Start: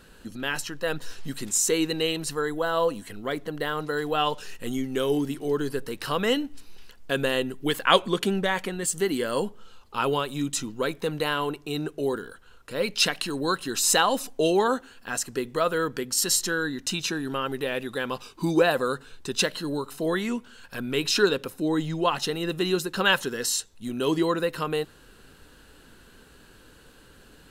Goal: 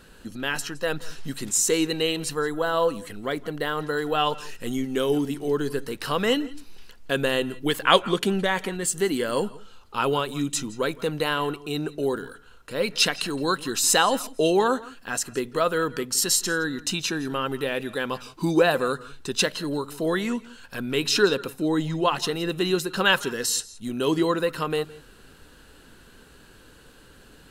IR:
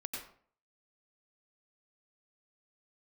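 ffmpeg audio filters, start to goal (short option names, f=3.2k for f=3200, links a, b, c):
-filter_complex "[0:a]asplit=2[a][b];[1:a]atrim=start_sample=2205,afade=t=out:st=0.14:d=0.01,atrim=end_sample=6615,asetrate=23373,aresample=44100[c];[b][c]afir=irnorm=-1:irlink=0,volume=-14.5dB[d];[a][d]amix=inputs=2:normalize=0"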